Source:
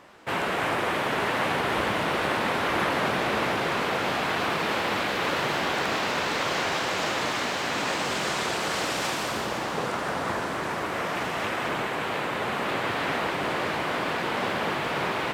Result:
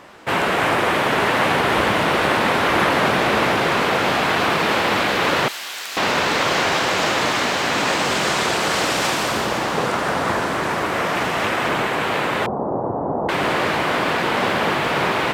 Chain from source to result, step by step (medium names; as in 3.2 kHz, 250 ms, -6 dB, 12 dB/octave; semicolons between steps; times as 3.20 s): 5.48–5.97 s: differentiator; 12.46–13.29 s: steep low-pass 920 Hz 36 dB/octave; trim +8 dB